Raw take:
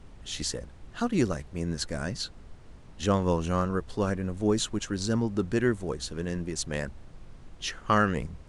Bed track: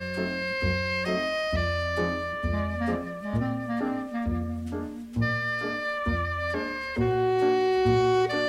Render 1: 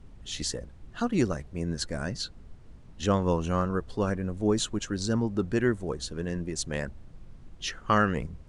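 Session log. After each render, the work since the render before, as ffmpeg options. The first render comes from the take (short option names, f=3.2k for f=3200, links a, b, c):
-af "afftdn=nr=6:nf=-49"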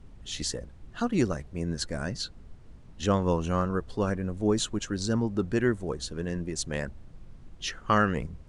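-af anull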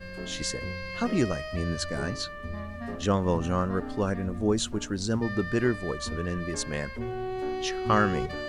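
-filter_complex "[1:a]volume=-9dB[a];[0:a][a]amix=inputs=2:normalize=0"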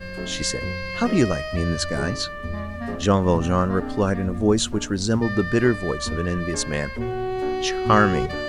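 -af "volume=6.5dB"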